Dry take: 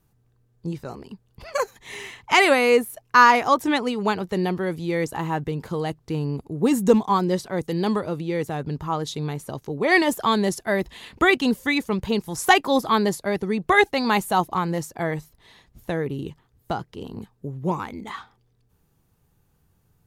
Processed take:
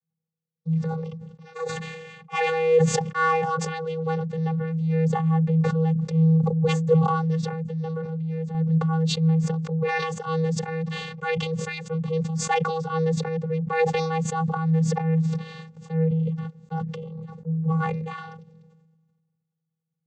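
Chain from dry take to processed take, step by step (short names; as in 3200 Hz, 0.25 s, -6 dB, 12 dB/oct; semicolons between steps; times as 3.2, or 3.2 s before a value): gate with hold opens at -40 dBFS; vocoder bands 16, square 161 Hz; 7.49–8.55 compressor 6:1, threshold -26 dBFS, peak gain reduction 9.5 dB; transient shaper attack -5 dB, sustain 0 dB; sustainer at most 35 dB/s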